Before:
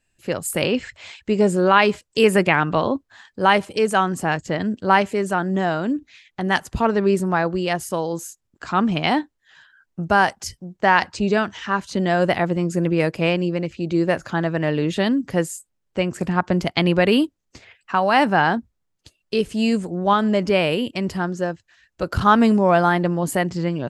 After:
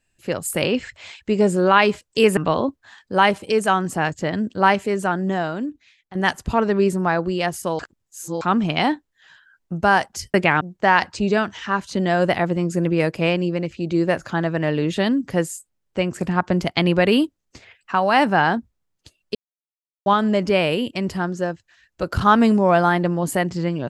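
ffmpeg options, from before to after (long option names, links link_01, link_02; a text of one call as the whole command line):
ffmpeg -i in.wav -filter_complex "[0:a]asplit=9[link_01][link_02][link_03][link_04][link_05][link_06][link_07][link_08][link_09];[link_01]atrim=end=2.372[link_10];[link_02]atrim=start=2.638:end=6.42,asetpts=PTS-STARTPTS,afade=type=out:start_time=2.772:duration=1.01:silence=0.237137[link_11];[link_03]atrim=start=6.42:end=8.062,asetpts=PTS-STARTPTS,afade=type=in:duration=0.004:curve=hsin:silence=0.237137[link_12];[link_04]atrim=start=8.058:end=8.682,asetpts=PTS-STARTPTS,areverse[link_13];[link_05]atrim=start=8.678:end=10.612[link_14];[link_06]atrim=start=2.368:end=2.642[link_15];[link_07]atrim=start=10.608:end=19.35,asetpts=PTS-STARTPTS,afade=type=out:start_time=8.738:duration=0.004:curve=hsin[link_16];[link_08]atrim=start=19.35:end=20.06,asetpts=PTS-STARTPTS,volume=0[link_17];[link_09]atrim=start=20.06,asetpts=PTS-STARTPTS,afade=type=in:duration=0.004:curve=hsin[link_18];[link_11][link_12]concat=n=2:v=0:a=1[link_19];[link_10][link_19]acrossfade=duration=0.004:curve1=hsin:curve2=hsin[link_20];[link_20][link_13]acrossfade=duration=0.004:curve1=hsin:curve2=hsin[link_21];[link_21][link_14]acrossfade=duration=0.004:curve1=hsin:curve2=hsin[link_22];[link_22][link_15]acrossfade=duration=0.004:curve1=hsin:curve2=hsin[link_23];[link_16][link_17][link_18]concat=n=3:v=0:a=1[link_24];[link_23][link_24]acrossfade=duration=0.004:curve1=hsin:curve2=hsin" out.wav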